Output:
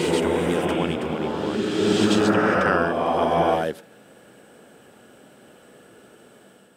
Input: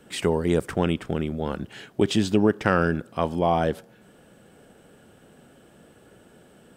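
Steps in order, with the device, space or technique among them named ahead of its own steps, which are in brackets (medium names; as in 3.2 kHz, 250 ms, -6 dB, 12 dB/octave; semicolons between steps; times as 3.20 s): ghost voice (reverse; reverberation RT60 2.8 s, pre-delay 76 ms, DRR -4 dB; reverse; high-pass 350 Hz 6 dB/octave)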